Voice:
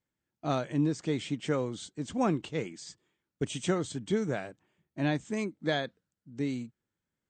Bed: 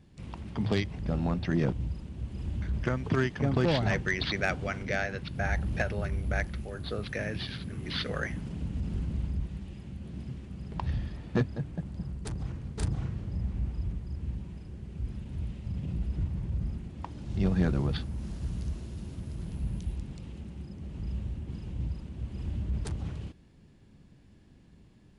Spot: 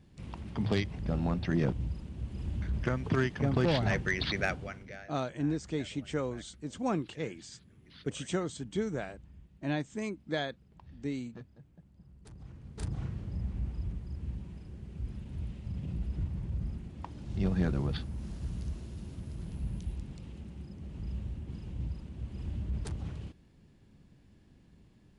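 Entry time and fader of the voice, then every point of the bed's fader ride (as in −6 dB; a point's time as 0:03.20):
4.65 s, −3.5 dB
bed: 0:04.44 −1.5 dB
0:05.16 −21.5 dB
0:11.95 −21.5 dB
0:13.03 −3 dB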